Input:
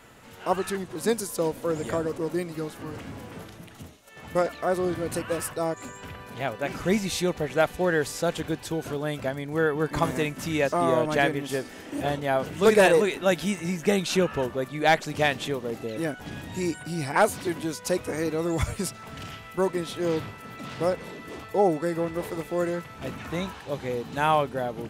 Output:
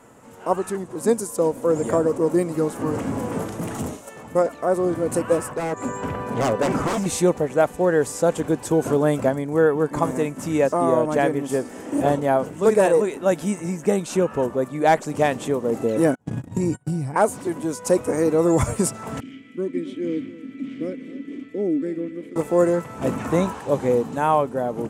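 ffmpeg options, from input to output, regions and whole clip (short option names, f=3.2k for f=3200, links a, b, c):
-filter_complex "[0:a]asettb=1/sr,asplit=3[a][b][c];[a]atrim=end=3.594[d];[b]atrim=start=3.59:end=4.23,asetpts=PTS-STARTPTS,afade=t=in:d=0.004:c=qsin,afade=t=out:st=0.636:d=0.004:c=qsin,acontrast=32,asoftclip=type=hard:threshold=-37dB[e];[c]atrim=start=4.226[f];[d][e]acrossfade=d=0.004:c1=hsin:c2=qsin[g];[g][f]acrossfade=d=0.004:c1=qsin:c2=hsin,asettb=1/sr,asplit=3[h][i][j];[h]atrim=end=5.394[k];[i]atrim=start=5.39:end=7.06,asetpts=PTS-STARTPTS,afade=t=in:d=0.004:c=qsin,afade=t=out:st=1.666:d=0.004:c=qsin,highshelf=f=5k:g=-10,aeval=exprs='0.0398*(abs(mod(val(0)/0.0398+3,4)-2)-1)':c=same[l];[j]atrim=start=7.056[m];[k][l]acrossfade=d=0.004:c1=hsin:c2=qsin[n];[n][m]acrossfade=d=0.004:c1=qsin:c2=hsin,asettb=1/sr,asplit=3[o][p][q];[o]atrim=end=16.154[r];[p]atrim=start=16.15:end=17.16,asetpts=PTS-STARTPTS,afade=t=in:d=0.004:c=qsin,afade=t=out:st=1.006:d=0.004:c=qsin,agate=range=-38dB:threshold=-36dB:ratio=16:release=100:detection=peak,equalizer=f=120:w=1:g=15,acompressor=threshold=-31dB:ratio=6:attack=3.2:release=140:knee=1:detection=peak[s];[q]atrim=start=17.156[t];[r][s]acrossfade=d=0.004:c1=hsin:c2=qsin[u];[u][t]acrossfade=d=0.004:c1=qsin:c2=hsin,asettb=1/sr,asplit=3[v][w][x];[v]atrim=end=19.204[y];[w]atrim=start=19.2:end=22.36,asetpts=PTS-STARTPTS,afade=t=in:d=0.004:c=qsin,afade=t=out:st=3.156:d=0.004:c=qsin,asplit=3[z][aa][ab];[z]bandpass=f=270:t=q:w=8,volume=0dB[ac];[aa]bandpass=f=2.29k:t=q:w=8,volume=-6dB[ad];[ab]bandpass=f=3.01k:t=q:w=8,volume=-9dB[ae];[ac][ad][ae]amix=inputs=3:normalize=0,aecho=1:1:266:0.15,atrim=end_sample=139356[af];[x]atrim=start=22.356[ag];[y][af]acrossfade=d=0.004:c1=hsin:c2=qsin[ah];[ah][ag]acrossfade=d=0.004:c1=qsin:c2=hsin,equalizer=f=125:t=o:w=1:g=5,equalizer=f=250:t=o:w=1:g=9,equalizer=f=500:t=o:w=1:g=8,equalizer=f=1k:t=o:w=1:g=8,equalizer=f=4k:t=o:w=1:g=-6,equalizer=f=8k:t=o:w=1:g=11,dynaudnorm=f=220:g=3:m=11.5dB,volume=-6dB"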